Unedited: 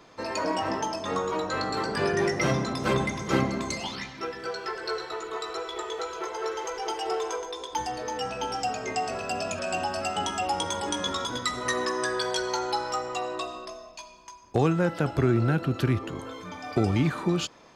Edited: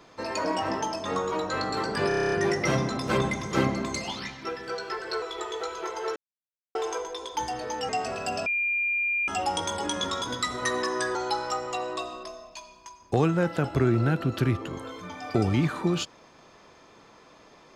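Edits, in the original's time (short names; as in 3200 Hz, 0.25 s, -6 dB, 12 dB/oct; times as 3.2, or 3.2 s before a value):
2.08 stutter 0.03 s, 9 plays
4.98–5.6 cut
6.54–7.13 mute
8.27–8.92 cut
9.49–10.31 bleep 2400 Hz -23.5 dBFS
12.18–12.57 cut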